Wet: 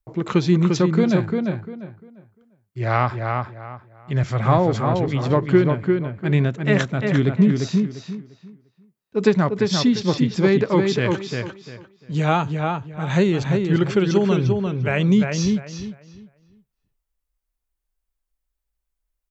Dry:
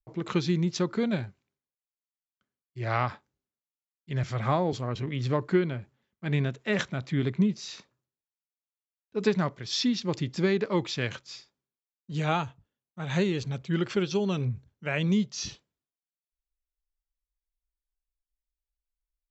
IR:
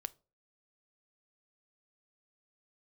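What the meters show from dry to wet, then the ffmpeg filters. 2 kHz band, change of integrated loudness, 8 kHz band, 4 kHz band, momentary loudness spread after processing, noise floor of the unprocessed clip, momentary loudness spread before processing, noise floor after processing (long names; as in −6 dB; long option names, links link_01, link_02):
+7.5 dB, +9.0 dB, can't be measured, +4.5 dB, 13 LU, below −85 dBFS, 12 LU, −79 dBFS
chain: -filter_complex "[0:a]equalizer=frequency=4100:width=0.62:gain=-5,asplit=2[link_01][link_02];[link_02]adelay=348,lowpass=frequency=3000:poles=1,volume=-4dB,asplit=2[link_03][link_04];[link_04]adelay=348,lowpass=frequency=3000:poles=1,volume=0.26,asplit=2[link_05][link_06];[link_06]adelay=348,lowpass=frequency=3000:poles=1,volume=0.26,asplit=2[link_07][link_08];[link_08]adelay=348,lowpass=frequency=3000:poles=1,volume=0.26[link_09];[link_01][link_03][link_05][link_07][link_09]amix=inputs=5:normalize=0,volume=8.5dB"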